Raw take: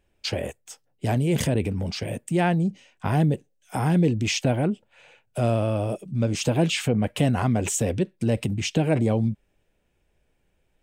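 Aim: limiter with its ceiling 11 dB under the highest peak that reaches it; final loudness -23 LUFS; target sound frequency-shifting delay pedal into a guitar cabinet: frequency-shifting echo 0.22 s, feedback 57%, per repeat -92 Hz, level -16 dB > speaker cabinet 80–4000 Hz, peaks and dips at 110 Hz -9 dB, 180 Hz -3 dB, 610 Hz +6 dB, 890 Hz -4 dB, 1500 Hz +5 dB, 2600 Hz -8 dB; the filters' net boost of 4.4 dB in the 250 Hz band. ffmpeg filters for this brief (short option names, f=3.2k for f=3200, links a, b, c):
-filter_complex "[0:a]equalizer=f=250:t=o:g=7.5,alimiter=limit=-16.5dB:level=0:latency=1,asplit=6[a][b][c][d][e][f];[b]adelay=220,afreqshift=-92,volume=-16dB[g];[c]adelay=440,afreqshift=-184,volume=-20.9dB[h];[d]adelay=660,afreqshift=-276,volume=-25.8dB[i];[e]adelay=880,afreqshift=-368,volume=-30.6dB[j];[f]adelay=1100,afreqshift=-460,volume=-35.5dB[k];[a][g][h][i][j][k]amix=inputs=6:normalize=0,highpass=80,equalizer=f=110:t=q:w=4:g=-9,equalizer=f=180:t=q:w=4:g=-3,equalizer=f=610:t=q:w=4:g=6,equalizer=f=890:t=q:w=4:g=-4,equalizer=f=1.5k:t=q:w=4:g=5,equalizer=f=2.6k:t=q:w=4:g=-8,lowpass=f=4k:w=0.5412,lowpass=f=4k:w=1.3066,volume=4.5dB"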